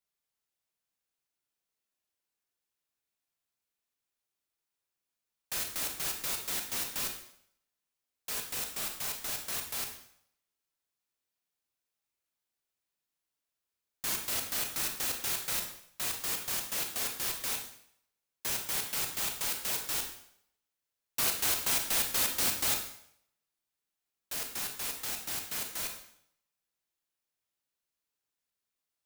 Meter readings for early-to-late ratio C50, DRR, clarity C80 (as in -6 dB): 6.5 dB, 3.5 dB, 10.0 dB